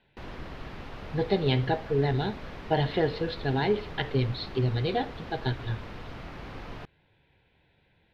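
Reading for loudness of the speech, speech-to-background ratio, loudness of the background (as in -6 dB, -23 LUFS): -29.0 LUFS, 13.5 dB, -42.5 LUFS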